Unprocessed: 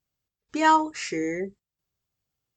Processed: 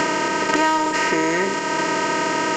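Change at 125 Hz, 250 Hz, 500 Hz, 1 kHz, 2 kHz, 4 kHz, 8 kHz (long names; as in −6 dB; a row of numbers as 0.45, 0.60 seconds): +11.5, +7.0, +10.0, +5.5, +11.5, +12.5, +12.5 decibels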